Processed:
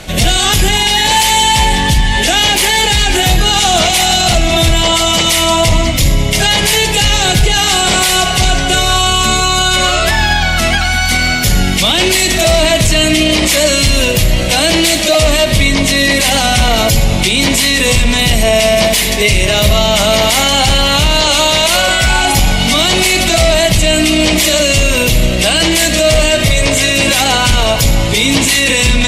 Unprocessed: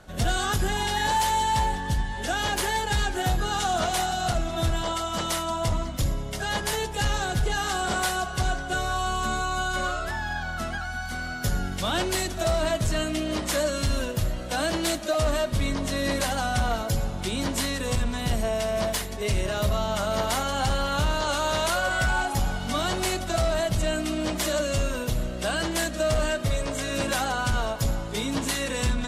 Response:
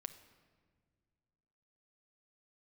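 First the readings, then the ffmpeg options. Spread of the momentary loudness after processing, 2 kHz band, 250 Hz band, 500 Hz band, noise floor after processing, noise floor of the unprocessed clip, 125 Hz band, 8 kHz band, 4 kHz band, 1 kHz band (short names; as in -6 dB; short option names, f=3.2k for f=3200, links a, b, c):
2 LU, +16.5 dB, +15.0 dB, +14.0 dB, -13 dBFS, -33 dBFS, +14.0 dB, +19.0 dB, +21.5 dB, +12.5 dB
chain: -filter_complex "[0:a]asplit=2[a][b];[b]highshelf=f=1.7k:t=q:w=3:g=8.5[c];[1:a]atrim=start_sample=2205[d];[c][d]afir=irnorm=-1:irlink=0,volume=6.5dB[e];[a][e]amix=inputs=2:normalize=0,alimiter=level_in=13.5dB:limit=-1dB:release=50:level=0:latency=1,volume=-1dB"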